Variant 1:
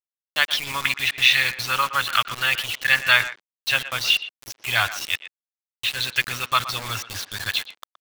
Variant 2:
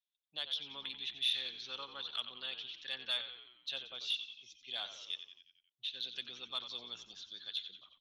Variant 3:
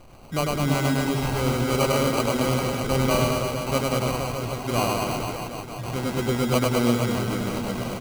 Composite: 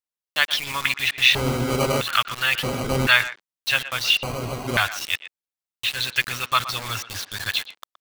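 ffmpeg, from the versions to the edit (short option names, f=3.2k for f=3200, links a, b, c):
-filter_complex "[2:a]asplit=3[a][b][c];[0:a]asplit=4[d][e][f][g];[d]atrim=end=1.352[h];[a]atrim=start=1.348:end=2.012[i];[e]atrim=start=2.008:end=2.632[j];[b]atrim=start=2.628:end=3.072[k];[f]atrim=start=3.068:end=4.232[l];[c]atrim=start=4.228:end=4.772[m];[g]atrim=start=4.768[n];[h][i]acrossfade=d=0.004:c1=hsin:c2=hsin[o];[o][j]acrossfade=d=0.004:c1=hsin:c2=hsin[p];[p][k]acrossfade=d=0.004:c1=hsin:c2=hsin[q];[q][l]acrossfade=d=0.004:c1=hsin:c2=hsin[r];[r][m]acrossfade=d=0.004:c1=hsin:c2=hsin[s];[s][n]acrossfade=d=0.004:c1=hsin:c2=hsin"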